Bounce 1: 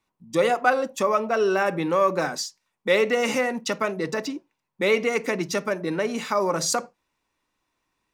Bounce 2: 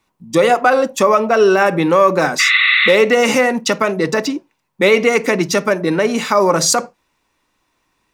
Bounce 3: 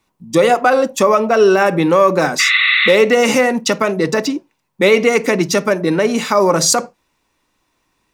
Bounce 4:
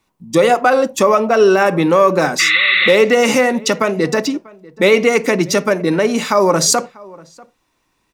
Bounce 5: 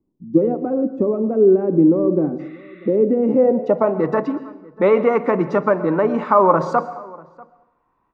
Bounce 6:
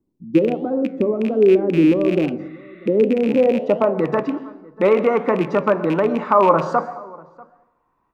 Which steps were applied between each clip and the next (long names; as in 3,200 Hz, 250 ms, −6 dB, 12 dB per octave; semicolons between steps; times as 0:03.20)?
healed spectral selection 0:02.42–0:02.90, 1,100–4,500 Hz after; boost into a limiter +11.5 dB; level −1 dB
parametric band 1,500 Hz −2.5 dB 2.4 octaves; level +1.5 dB
slap from a distant wall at 110 metres, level −23 dB
low-pass filter sweep 320 Hz → 1,100 Hz, 0:03.19–0:04.06; dense smooth reverb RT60 0.81 s, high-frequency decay 0.9×, pre-delay 105 ms, DRR 14 dB; level −4 dB
loose part that buzzes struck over −22 dBFS, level −20 dBFS; flanger 1.3 Hz, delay 7.6 ms, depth 8 ms, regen +88%; level +4 dB